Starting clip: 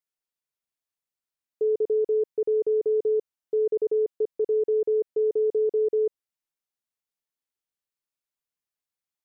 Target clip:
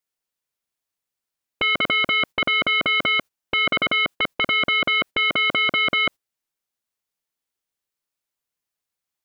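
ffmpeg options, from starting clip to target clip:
-af "agate=range=-15dB:threshold=-34dB:ratio=16:detection=peak,aeval=exprs='0.112*sin(PI/2*4.47*val(0)/0.112)':c=same,volume=3.5dB"

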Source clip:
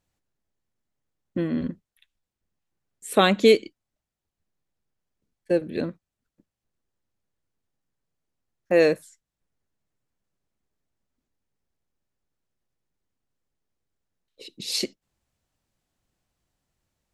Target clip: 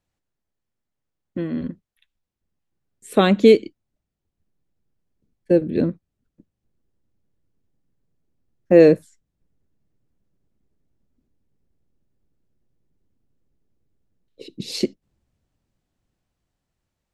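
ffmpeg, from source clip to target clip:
-filter_complex "[0:a]highshelf=f=6.7k:g=-6,acrossover=split=450|5300[a][b][c];[a]dynaudnorm=f=450:g=13:m=16dB[d];[d][b][c]amix=inputs=3:normalize=0,volume=-1dB"

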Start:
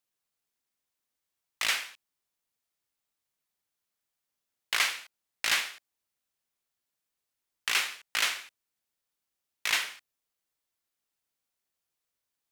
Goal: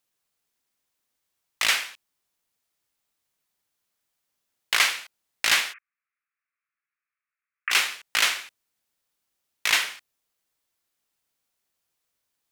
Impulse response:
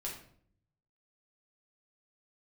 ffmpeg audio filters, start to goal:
-filter_complex "[0:a]asplit=3[a][b][c];[a]afade=t=out:st=5.72:d=0.02[d];[b]asuperpass=centerf=1700:order=12:qfactor=1.2,afade=t=in:st=5.72:d=0.02,afade=t=out:st=7.7:d=0.02[e];[c]afade=t=in:st=7.7:d=0.02[f];[d][e][f]amix=inputs=3:normalize=0,volume=6dB"

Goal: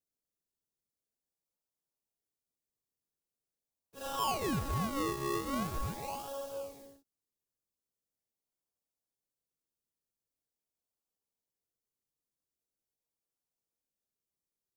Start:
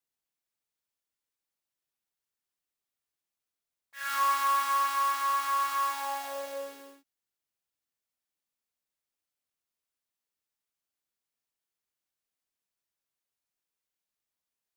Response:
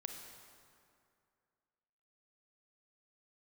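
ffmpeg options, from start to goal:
-filter_complex "[0:a]equalizer=f=470:w=5.8:g=6,acrossover=split=900|3800[a][b][c];[b]acrusher=samples=39:mix=1:aa=0.000001:lfo=1:lforange=39:lforate=0.43[d];[c]alimiter=level_in=12.5dB:limit=-24dB:level=0:latency=1,volume=-12.5dB[e];[a][d][e]amix=inputs=3:normalize=0,volume=-4dB"

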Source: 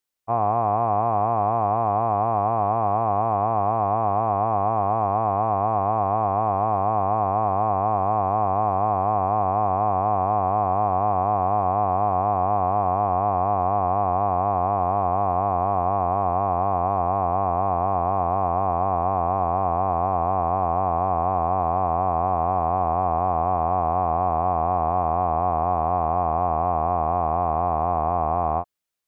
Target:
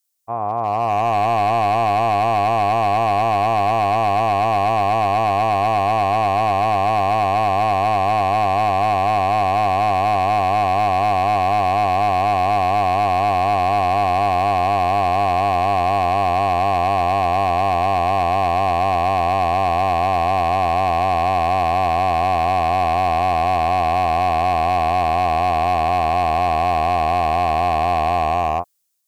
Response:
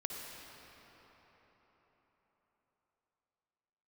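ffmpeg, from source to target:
-af "dynaudnorm=f=190:g=9:m=15dB,bass=f=250:g=-3,treble=f=4k:g=15,asoftclip=type=hard:threshold=-10.5dB,volume=-2.5dB"

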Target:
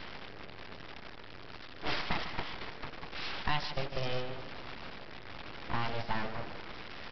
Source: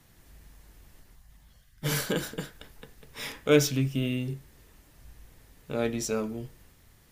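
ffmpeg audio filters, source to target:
-filter_complex "[0:a]aeval=exprs='val(0)+0.5*0.0376*sgn(val(0))':c=same,acrossover=split=230 2100:gain=0.178 1 0.0891[a][b][c];[a][b][c]amix=inputs=3:normalize=0,agate=range=-9dB:threshold=-31dB:ratio=16:detection=peak,acrossover=split=3400[d][e];[d]acompressor=threshold=-37dB:ratio=6[f];[f][e]amix=inputs=2:normalize=0,aecho=1:1:150|300|450|600|750|900:0.282|0.158|0.0884|0.0495|0.0277|0.0155,aresample=11025,aeval=exprs='abs(val(0))':c=same,aresample=44100,highshelf=f=3.1k:g=8.5,volume=7.5dB"

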